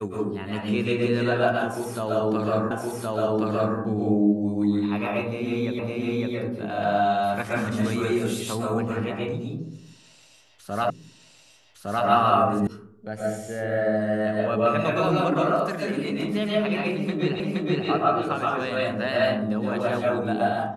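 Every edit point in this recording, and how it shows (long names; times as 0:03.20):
0:02.71: the same again, the last 1.07 s
0:05.79: the same again, the last 0.56 s
0:10.90: the same again, the last 1.16 s
0:12.67: cut off before it has died away
0:17.40: the same again, the last 0.47 s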